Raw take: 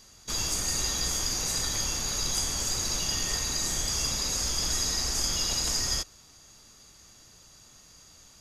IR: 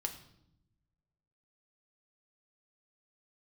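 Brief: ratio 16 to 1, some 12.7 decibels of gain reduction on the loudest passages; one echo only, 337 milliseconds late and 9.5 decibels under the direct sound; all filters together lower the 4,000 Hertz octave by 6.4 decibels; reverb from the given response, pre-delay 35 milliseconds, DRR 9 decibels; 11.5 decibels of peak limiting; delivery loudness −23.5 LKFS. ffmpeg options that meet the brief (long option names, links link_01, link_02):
-filter_complex "[0:a]equalizer=frequency=4000:width_type=o:gain=-8.5,acompressor=threshold=-40dB:ratio=16,alimiter=level_in=16dB:limit=-24dB:level=0:latency=1,volume=-16dB,aecho=1:1:337:0.335,asplit=2[link_01][link_02];[1:a]atrim=start_sample=2205,adelay=35[link_03];[link_02][link_03]afir=irnorm=-1:irlink=0,volume=-9dB[link_04];[link_01][link_04]amix=inputs=2:normalize=0,volume=24.5dB"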